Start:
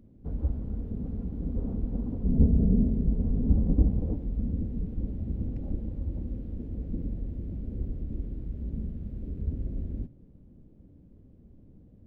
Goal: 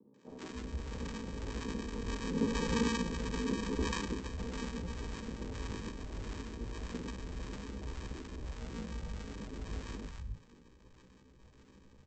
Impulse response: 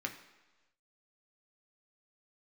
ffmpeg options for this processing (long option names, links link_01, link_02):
-filter_complex "[0:a]lowshelf=frequency=180:gain=-8.5,acrossover=split=180[link_01][link_02];[link_01]acompressor=threshold=-39dB:ratio=6[link_03];[link_03][link_02]amix=inputs=2:normalize=0,flanger=delay=15:depth=4.2:speed=0.26,adynamicsmooth=sensitivity=7:basefreq=560,aresample=16000,acrusher=samples=23:mix=1:aa=0.000001,aresample=44100,acrossover=split=440[link_04][link_05];[link_04]aeval=exprs='val(0)*(1-0.5/2+0.5/2*cos(2*PI*1.7*n/s))':channel_layout=same[link_06];[link_05]aeval=exprs='val(0)*(1-0.5/2-0.5/2*cos(2*PI*1.7*n/s))':channel_layout=same[link_07];[link_06][link_07]amix=inputs=2:normalize=0,acrossover=split=150|780[link_08][link_09][link_10];[link_10]adelay=140[link_11];[link_08]adelay=290[link_12];[link_12][link_09][link_11]amix=inputs=3:normalize=0,volume=6dB"